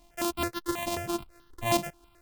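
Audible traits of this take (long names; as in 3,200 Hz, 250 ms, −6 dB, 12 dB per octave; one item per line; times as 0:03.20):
a buzz of ramps at a fixed pitch in blocks of 128 samples
tremolo triangle 7.5 Hz, depth 40%
a quantiser's noise floor 12 bits, dither none
notches that jump at a steady rate 9.3 Hz 410–2,300 Hz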